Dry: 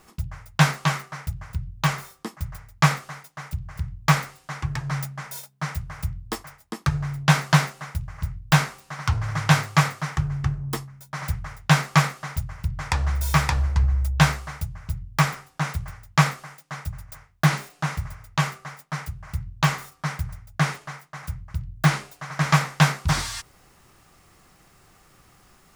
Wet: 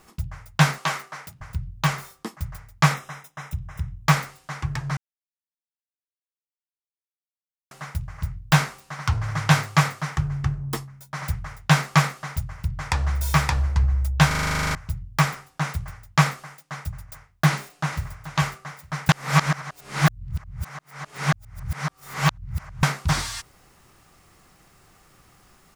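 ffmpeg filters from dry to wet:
-filter_complex "[0:a]asettb=1/sr,asplit=3[a][b][c];[a]atrim=end=0.784[d];[b]atrim=start=0.78:end=1.41,asetpts=PTS-STARTPTS,afade=t=in:d=0.004:c=qsin,afade=t=out:st=0.626:d=0.004:c=qsin,highpass=270[e];[c]atrim=start=1.406[f];[d][e]acrossfade=d=0.004:c1=hsin:c2=qsin[g];[g][f]acrossfade=d=0.004:c1=qsin:c2=hsin,asettb=1/sr,asplit=3[h][i][j];[h]atrim=end=2.944[k];[i]atrim=start=2.94:end=4.04,asetpts=PTS-STARTPTS,afade=t=in:d=0.004:c=qsin,afade=t=out:st=1.096:d=0.004:c=qsin,asuperstop=centerf=4500:order=20:qfactor=6.3[l];[j]atrim=start=4.036[m];[k][l]acrossfade=d=0.004:c1=hsin:c2=qsin[n];[n][m]acrossfade=d=0.004:c1=qsin:c2=hsin,asplit=2[o][p];[p]afade=t=in:st=17.49:d=0.01,afade=t=out:st=18.11:d=0.01,aecho=0:1:430|860|1290|1720:0.251189|0.087916|0.0307706|0.0107697[q];[o][q]amix=inputs=2:normalize=0,asplit=17[r][s][t][u][v][w][x][y][z][aa][ab][ac][ad][ae][af][ag][ah];[r]atrim=end=4.97,asetpts=PTS-STARTPTS,afade=t=out:st=4.966:d=0.004:c=hsin[ai];[s]atrim=start=4.97:end=7.71,asetpts=PTS-STARTPTS,volume=0[aj];[t]atrim=start=7.71:end=14.312,asetpts=PTS-STARTPTS,afade=t=in:d=0.004:c=hsin[ak];[u]atrim=start=14.268:end=14.312[al];[v]atrim=start=14.268:end=14.312[am];[w]atrim=start=14.268:end=14.312[an];[x]atrim=start=14.268:end=14.312[ao];[y]atrim=start=14.268:end=14.312[ap];[z]atrim=start=14.268:end=14.312[aq];[aa]atrim=start=14.268:end=14.312[ar];[ab]atrim=start=14.268:end=14.312[as];[ac]atrim=start=14.268:end=14.312[at];[ad]atrim=start=14.268:end=14.312[au];[ae]atrim=start=14.268:end=14.312[av];[af]atrim=start=14.748:end=19.092[aw];[ag]atrim=start=19.088:end=22.832,asetpts=PTS-STARTPTS,areverse[ax];[ah]atrim=start=22.828[ay];[ai][aj][ak]concat=n=3:v=0:a=1[az];[az][al]acrossfade=d=0.004:c1=hsin:c2=hsin[ba];[ba][am]acrossfade=d=0.004:c1=hsin:c2=hsin[bb];[bb][an]acrossfade=d=0.004:c1=hsin:c2=hsin[bc];[bc][ao]acrossfade=d=0.004:c1=hsin:c2=hsin[bd];[bd][ap]acrossfade=d=0.004:c1=hsin:c2=hsin[be];[be][aq]acrossfade=d=0.004:c1=hsin:c2=hsin[bf];[bf][ar]acrossfade=d=0.004:c1=hsin:c2=hsin[bg];[bg][as]acrossfade=d=0.004:c1=hsin:c2=hsin[bh];[bh][at]acrossfade=d=0.004:c1=hsin:c2=hsin[bi];[bi][au]acrossfade=d=0.004:c1=hsin:c2=hsin[bj];[bj][av]acrossfade=d=0.004:c1=hsin:c2=hsin[bk];[bk][aw]acrossfade=d=0.004:c1=hsin:c2=hsin[bl];[bl][ax]acrossfade=d=0.004:c1=hsin:c2=hsin[bm];[bm][ay]acrossfade=d=0.004:c1=hsin:c2=hsin"

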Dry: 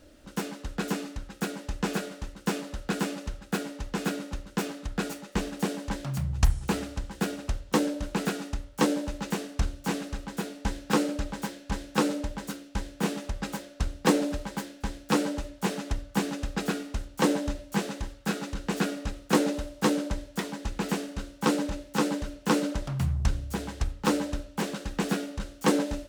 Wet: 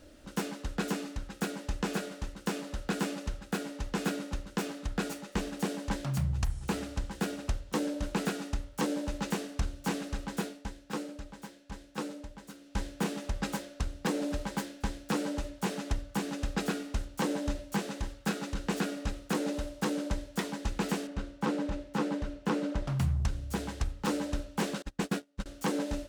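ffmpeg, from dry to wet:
-filter_complex "[0:a]asettb=1/sr,asplit=3[a][b][c];[a]atrim=end=21.074[d];[b]atrim=start=21.07:end=22.88,asetpts=PTS-STARTPTS,afade=t=in:d=0.004:c=qsin,afade=t=out:st=1.806:d=0.004:c=qsin,lowpass=f=2.4k:p=1[e];[c]atrim=start=22.876[f];[d][e]acrossfade=d=0.004:c1=hsin:c2=qsin[g];[g][f]acrossfade=d=0.004:c1=qsin:c2=hsin,asettb=1/sr,asplit=3[h][i][j];[h]atrim=end=24.824[k];[i]atrim=start=24.82:end=25.46,asetpts=PTS-STARTPTS,afade=t=in:d=0.004:c=qsin,afade=t=out:st=0.636:d=0.004:c=qsin,agate=range=-31dB:threshold=-31dB:ratio=16:release=100:detection=peak[l];[j]atrim=start=25.456[m];[k][l]acrossfade=d=0.004:c1=hsin:c2=qsin[n];[n][m]acrossfade=d=0.004:c1=qsin:c2=hsin,asplit=3[o][p][q];[o]atrim=end=10.77,asetpts=PTS-STARTPTS,afade=t=out:st=10.44:d=0.33:c=qua:silence=0.251189[r];[p]atrim=start=10.77:end=12.48,asetpts=PTS-STARTPTS,volume=-12dB[s];[q]atrim=start=12.48,asetpts=PTS-STARTPTS,afade=t=in:d=0.33:c=qua:silence=0.251189[t];[r][s][t]concat=n=3:v=0:a=1,equalizer=f=15k:w=7.4:g=-11,alimiter=limit=-19.5dB:level=0:latency=1:release=327"

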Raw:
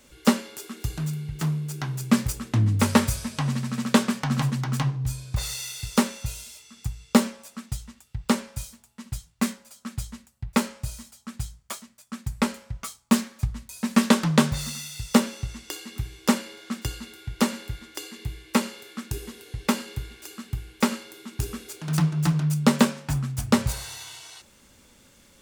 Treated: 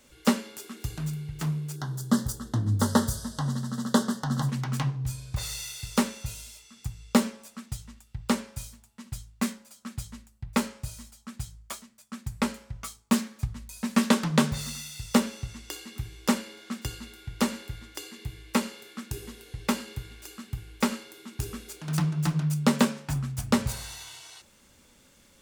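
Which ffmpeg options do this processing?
-filter_complex "[0:a]asettb=1/sr,asplit=3[a][b][c];[a]atrim=end=1.764[d];[b]atrim=start=1.76:end=4.49,asetpts=PTS-STARTPTS,afade=t=in:d=0.004:c=qsin,afade=t=out:st=2.726:d=0.004:c=qsin,asuperstop=centerf=2400:order=4:qfactor=1.5[e];[c]atrim=start=4.486[f];[d][e]acrossfade=d=0.004:c1=hsin:c2=qsin[g];[g][f]acrossfade=d=0.004:c1=qsin:c2=hsin,bandreject=f=54.68:t=h:w=4,bandreject=f=109.36:t=h:w=4,bandreject=f=164.04:t=h:w=4,bandreject=f=218.72:t=h:w=4,bandreject=f=273.4:t=h:w=4,bandreject=f=328.08:t=h:w=4,bandreject=f=382.76:t=h:w=4,bandreject=f=437.44:t=h:w=4,volume=-3dB"

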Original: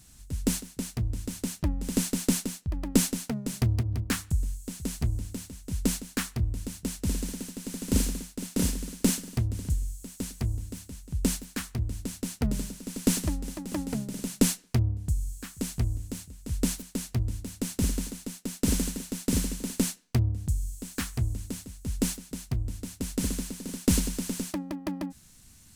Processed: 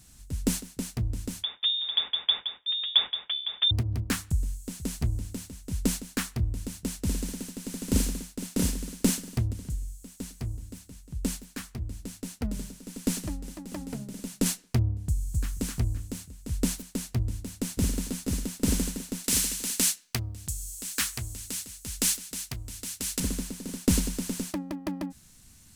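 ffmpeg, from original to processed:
-filter_complex "[0:a]asettb=1/sr,asplit=3[a][b][c];[a]atrim=end=1.434[d];[b]atrim=start=1.43:end=3.71,asetpts=PTS-STARTPTS,afade=t=in:d=0.004:c=qsin,afade=t=out:st=2.276:d=0.004:c=qsin,lowpass=f=3.1k:t=q:w=0.5098,lowpass=f=3.1k:t=q:w=0.6013,lowpass=f=3.1k:t=q:w=0.9,lowpass=f=3.1k:t=q:w=2.563,afreqshift=-3700[e];[c]atrim=start=3.706[f];[d][e]acrossfade=d=0.004:c1=hsin:c2=qsin[g];[g][f]acrossfade=d=0.004:c1=qsin:c2=hsin,asettb=1/sr,asplit=3[h][i][j];[h]atrim=end=9.534[k];[i]atrim=start=9.53:end=14.46,asetpts=PTS-STARTPTS,afade=t=in:d=0.004:c=qsin,afade=t=out:st=4.926:d=0.004:c=qsin,flanger=delay=3.5:depth=3.7:regen=-63:speed=1.7:shape=sinusoidal[l];[j]atrim=start=14.456[m];[k][l]acrossfade=d=0.004:c1=hsin:c2=qsin[n];[n][m]acrossfade=d=0.004:c1=qsin:c2=hsin,asplit=2[o][p];[p]afade=t=in:st=15.08:d=0.01,afade=t=out:st=15.53:d=0.01,aecho=0:1:260|520|780|1040:0.891251|0.222813|0.0557032|0.0139258[q];[o][q]amix=inputs=2:normalize=0,asplit=2[r][s];[s]afade=t=in:st=17.28:d=0.01,afade=t=out:st=17.97:d=0.01,aecho=0:1:490|980|1470:0.668344|0.133669|0.0267338[t];[r][t]amix=inputs=2:normalize=0,asettb=1/sr,asplit=3[u][v][w];[u]atrim=end=19.244[x];[v]atrim=start=19.24:end=23.2,asetpts=PTS-STARTPTS,afade=t=in:d=0.004:c=qsin,afade=t=out:st=3.956:d=0.004:c=qsin,tiltshelf=f=900:g=-9[y];[w]atrim=start=23.196[z];[x][y]acrossfade=d=0.004:c1=hsin:c2=qsin[aa];[aa][z]acrossfade=d=0.004:c1=qsin:c2=hsin"

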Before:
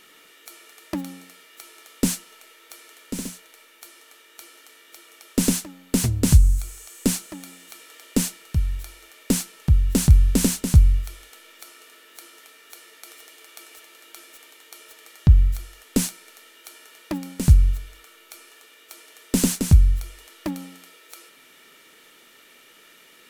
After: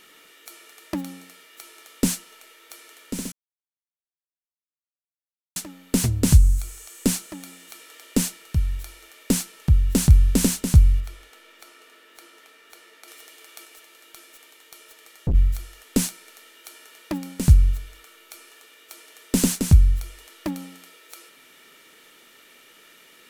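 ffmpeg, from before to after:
-filter_complex "[0:a]asettb=1/sr,asplit=3[a][b][c];[a]atrim=end=11.004[d];[b]atrim=start=11:end=13.08,asetpts=PTS-STARTPTS,afade=t=in:d=0.004:c=qsin,afade=t=out:st=2.076:d=0.004:c=qsin,highshelf=f=4.4k:g=-8.5[e];[c]atrim=start=13.076[f];[d][e]acrossfade=d=0.004:c1=hsin:c2=qsin[g];[g][f]acrossfade=d=0.004:c1=qsin:c2=hsin,asettb=1/sr,asplit=3[h][i][j];[h]atrim=end=13.654[k];[i]atrim=start=13.65:end=15.35,asetpts=PTS-STARTPTS,afade=t=in:d=0.004:c=qsin,afade=t=out:st=1.696:d=0.004:c=qsin,aeval=exprs='(tanh(8.91*val(0)+0.5)-tanh(0.5))/8.91':c=same[l];[j]atrim=start=15.346[m];[k][l]acrossfade=d=0.004:c1=hsin:c2=qsin[n];[n][m]acrossfade=d=0.004:c1=qsin:c2=hsin,asplit=3[o][p][q];[o]atrim=end=3.32,asetpts=PTS-STARTPTS,afade=t=out:st=3.316:d=0.004:c=hsin[r];[p]atrim=start=3.32:end=5.56,asetpts=PTS-STARTPTS,volume=0[s];[q]atrim=start=5.56,asetpts=PTS-STARTPTS,afade=t=in:d=0.004:c=hsin[t];[r][s][t]concat=n=3:v=0:a=1"

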